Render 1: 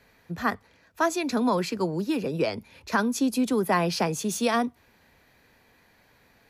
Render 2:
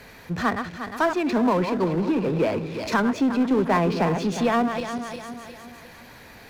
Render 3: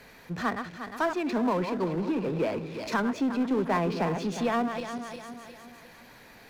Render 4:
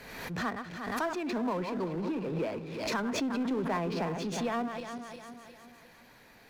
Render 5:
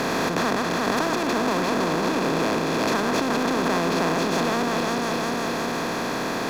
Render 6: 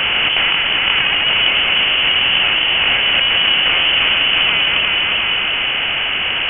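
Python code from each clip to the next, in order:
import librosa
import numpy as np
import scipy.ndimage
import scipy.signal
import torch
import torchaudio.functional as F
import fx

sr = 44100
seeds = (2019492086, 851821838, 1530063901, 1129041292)

y1 = fx.reverse_delay_fb(x, sr, ms=178, feedback_pct=58, wet_db=-10.0)
y1 = fx.env_lowpass_down(y1, sr, base_hz=2100.0, full_db=-22.5)
y1 = fx.power_curve(y1, sr, exponent=0.7)
y2 = fx.peak_eq(y1, sr, hz=78.0, db=-11.5, octaves=0.62)
y2 = F.gain(torch.from_numpy(y2), -5.5).numpy()
y3 = fx.pre_swell(y2, sr, db_per_s=43.0)
y3 = F.gain(torch.from_numpy(y3), -5.5).numpy()
y4 = fx.bin_compress(y3, sr, power=0.2)
y4 = F.gain(torch.from_numpy(y4), 1.0).numpy()
y5 = fx.halfwave_hold(y4, sr)
y5 = fx.freq_invert(y5, sr, carrier_hz=3200)
y5 = F.gain(torch.from_numpy(y5), 4.5).numpy()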